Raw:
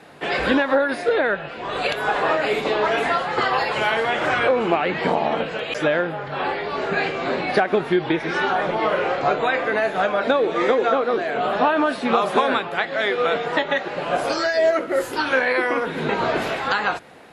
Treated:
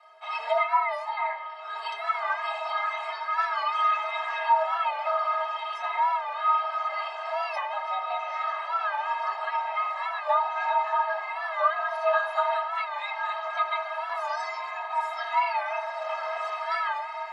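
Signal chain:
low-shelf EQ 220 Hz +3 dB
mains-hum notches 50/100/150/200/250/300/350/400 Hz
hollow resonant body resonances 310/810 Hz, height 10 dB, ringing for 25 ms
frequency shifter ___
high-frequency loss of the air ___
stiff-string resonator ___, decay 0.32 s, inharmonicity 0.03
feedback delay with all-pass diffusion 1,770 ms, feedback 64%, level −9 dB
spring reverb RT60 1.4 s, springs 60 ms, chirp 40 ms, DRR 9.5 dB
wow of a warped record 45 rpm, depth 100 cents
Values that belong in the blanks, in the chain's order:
+400 Hz, 58 metres, 190 Hz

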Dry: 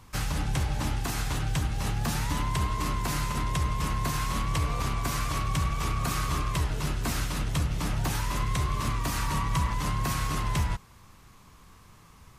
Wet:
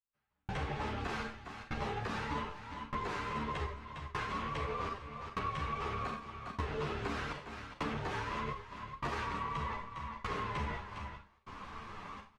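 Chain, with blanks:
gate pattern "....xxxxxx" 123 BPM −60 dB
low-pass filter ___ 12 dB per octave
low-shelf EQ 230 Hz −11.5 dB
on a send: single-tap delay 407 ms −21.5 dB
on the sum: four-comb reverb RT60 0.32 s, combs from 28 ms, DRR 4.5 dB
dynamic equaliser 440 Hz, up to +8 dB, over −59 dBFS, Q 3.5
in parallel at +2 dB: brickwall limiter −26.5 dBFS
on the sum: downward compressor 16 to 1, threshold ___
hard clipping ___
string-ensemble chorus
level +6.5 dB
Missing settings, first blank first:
2,600 Hz, −37 dBFS, −29.5 dBFS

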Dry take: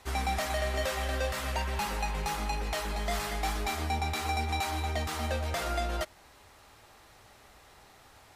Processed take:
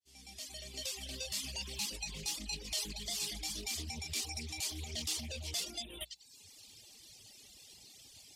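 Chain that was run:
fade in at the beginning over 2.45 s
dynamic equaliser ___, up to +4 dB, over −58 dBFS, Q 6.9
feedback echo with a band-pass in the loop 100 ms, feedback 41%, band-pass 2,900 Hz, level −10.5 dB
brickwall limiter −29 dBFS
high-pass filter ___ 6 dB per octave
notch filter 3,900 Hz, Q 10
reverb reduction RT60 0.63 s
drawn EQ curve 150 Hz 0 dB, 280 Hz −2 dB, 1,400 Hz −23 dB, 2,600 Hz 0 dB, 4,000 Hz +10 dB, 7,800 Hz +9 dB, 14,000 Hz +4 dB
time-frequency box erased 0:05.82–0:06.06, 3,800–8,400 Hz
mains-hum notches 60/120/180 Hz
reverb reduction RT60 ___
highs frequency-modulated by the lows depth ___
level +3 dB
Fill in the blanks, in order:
1,100 Hz, 140 Hz, 1.1 s, 0.19 ms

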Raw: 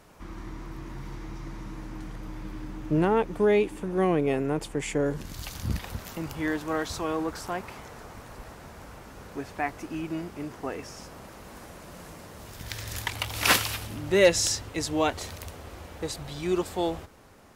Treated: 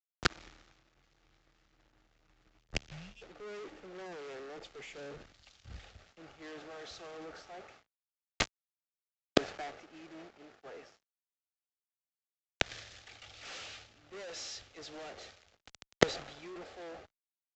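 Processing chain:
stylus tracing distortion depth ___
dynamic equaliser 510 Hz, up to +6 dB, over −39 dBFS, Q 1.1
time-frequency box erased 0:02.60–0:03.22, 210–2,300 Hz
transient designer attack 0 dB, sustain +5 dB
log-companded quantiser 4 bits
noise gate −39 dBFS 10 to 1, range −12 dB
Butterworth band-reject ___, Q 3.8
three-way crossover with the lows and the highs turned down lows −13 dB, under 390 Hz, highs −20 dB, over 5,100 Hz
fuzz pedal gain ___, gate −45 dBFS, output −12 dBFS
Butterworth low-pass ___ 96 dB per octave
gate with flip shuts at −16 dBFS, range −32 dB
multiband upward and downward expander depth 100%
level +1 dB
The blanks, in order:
0.038 ms, 990 Hz, 38 dB, 7,500 Hz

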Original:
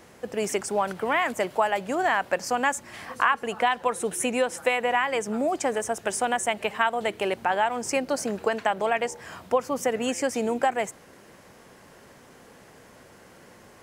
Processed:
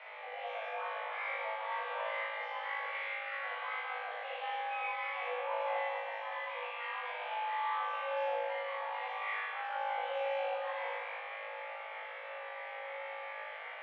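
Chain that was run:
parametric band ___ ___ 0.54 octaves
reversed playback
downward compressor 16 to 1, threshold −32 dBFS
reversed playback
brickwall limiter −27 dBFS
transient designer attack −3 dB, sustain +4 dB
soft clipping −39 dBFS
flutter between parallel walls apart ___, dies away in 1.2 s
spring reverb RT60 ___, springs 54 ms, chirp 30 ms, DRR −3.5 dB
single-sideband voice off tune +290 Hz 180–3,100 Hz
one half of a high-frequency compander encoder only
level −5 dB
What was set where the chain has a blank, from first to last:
1,800 Hz, +8 dB, 3.3 metres, 2.1 s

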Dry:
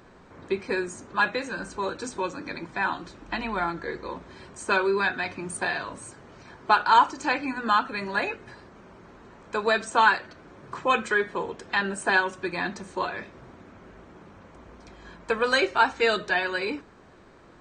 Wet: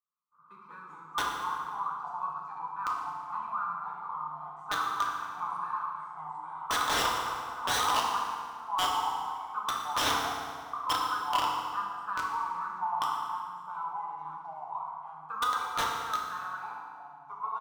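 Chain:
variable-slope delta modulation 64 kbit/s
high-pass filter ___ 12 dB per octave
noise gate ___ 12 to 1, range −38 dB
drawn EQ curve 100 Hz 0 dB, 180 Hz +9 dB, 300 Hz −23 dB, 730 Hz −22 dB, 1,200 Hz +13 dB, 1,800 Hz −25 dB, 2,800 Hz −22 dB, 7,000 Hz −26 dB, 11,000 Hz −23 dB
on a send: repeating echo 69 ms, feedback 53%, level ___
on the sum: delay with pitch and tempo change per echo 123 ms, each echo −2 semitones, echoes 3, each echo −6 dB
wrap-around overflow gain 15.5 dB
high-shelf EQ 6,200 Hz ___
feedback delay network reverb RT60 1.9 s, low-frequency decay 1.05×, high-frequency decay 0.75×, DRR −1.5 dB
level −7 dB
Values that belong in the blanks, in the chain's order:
610 Hz, −50 dBFS, −11 dB, −10.5 dB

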